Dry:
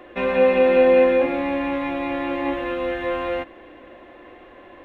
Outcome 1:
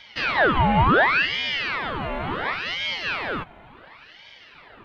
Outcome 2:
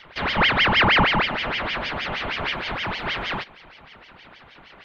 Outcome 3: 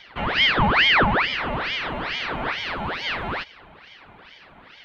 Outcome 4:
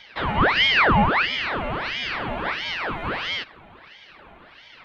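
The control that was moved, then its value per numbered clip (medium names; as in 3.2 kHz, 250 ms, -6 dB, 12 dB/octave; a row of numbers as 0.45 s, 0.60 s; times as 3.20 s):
ring modulator with a swept carrier, at: 0.7 Hz, 6.4 Hz, 2.3 Hz, 1.5 Hz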